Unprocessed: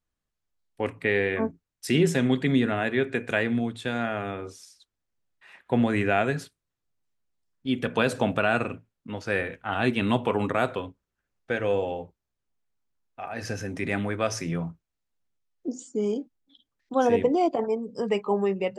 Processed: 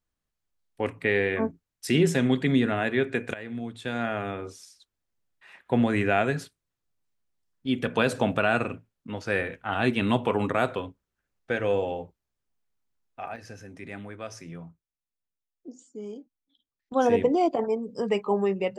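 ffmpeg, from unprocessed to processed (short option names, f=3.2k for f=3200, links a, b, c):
-filter_complex "[0:a]asplit=4[a][b][c][d];[a]atrim=end=3.34,asetpts=PTS-STARTPTS,afade=t=out:st=3.336:d=0.004:c=hsin:silence=0.11885[e];[b]atrim=start=3.34:end=13.36,asetpts=PTS-STARTPTS,afade=t=in:d=0.75:silence=0.11885,afade=t=out:st=9.87:d=0.15:c=log:silence=0.266073[f];[c]atrim=start=13.36:end=16.92,asetpts=PTS-STARTPTS,volume=-11.5dB[g];[d]atrim=start=16.92,asetpts=PTS-STARTPTS,afade=t=in:d=0.15:c=log:silence=0.266073[h];[e][f][g][h]concat=n=4:v=0:a=1"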